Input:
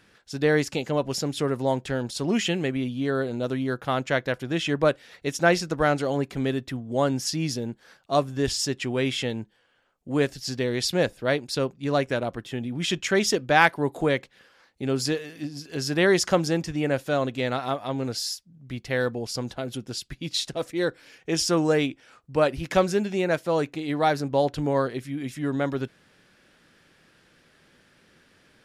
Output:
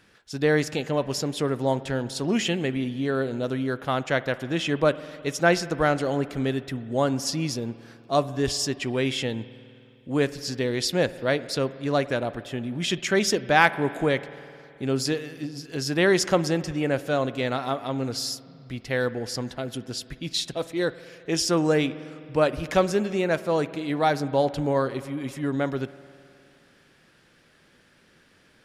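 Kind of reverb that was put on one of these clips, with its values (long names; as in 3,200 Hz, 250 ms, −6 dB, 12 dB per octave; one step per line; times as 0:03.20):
spring reverb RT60 2.6 s, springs 52 ms, chirp 80 ms, DRR 15.5 dB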